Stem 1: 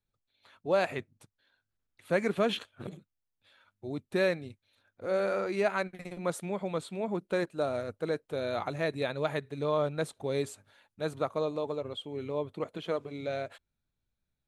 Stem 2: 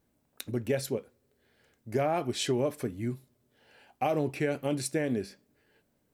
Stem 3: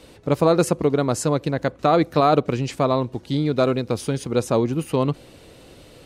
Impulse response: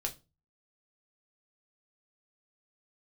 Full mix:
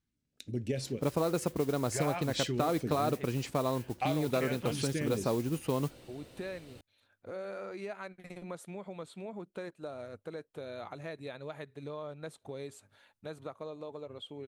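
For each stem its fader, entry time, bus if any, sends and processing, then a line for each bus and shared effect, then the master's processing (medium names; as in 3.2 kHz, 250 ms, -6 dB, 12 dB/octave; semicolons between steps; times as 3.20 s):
-1.0 dB, 2.25 s, no send, compression 3:1, threshold -41 dBFS, peak gain reduction 14 dB
-9.0 dB, 0.00 s, no send, low-pass 6.9 kHz 12 dB/octave; level rider gain up to 9 dB; phase shifter stages 2, 0.42 Hz, lowest notch 250–1100 Hz
-8.5 dB, 0.75 s, no send, modulation noise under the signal 19 dB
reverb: none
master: compression, threshold -26 dBFS, peak gain reduction 6.5 dB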